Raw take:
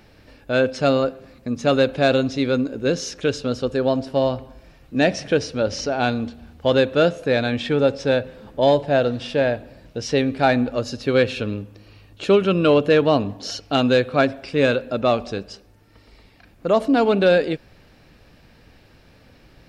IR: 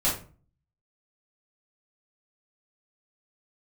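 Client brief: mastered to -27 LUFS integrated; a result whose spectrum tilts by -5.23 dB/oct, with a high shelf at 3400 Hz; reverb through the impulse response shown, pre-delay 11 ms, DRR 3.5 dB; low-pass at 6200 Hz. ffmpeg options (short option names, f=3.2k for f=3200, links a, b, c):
-filter_complex "[0:a]lowpass=6.2k,highshelf=f=3.4k:g=-5,asplit=2[a][b];[1:a]atrim=start_sample=2205,adelay=11[c];[b][c]afir=irnorm=-1:irlink=0,volume=-14.5dB[d];[a][d]amix=inputs=2:normalize=0,volume=-8dB"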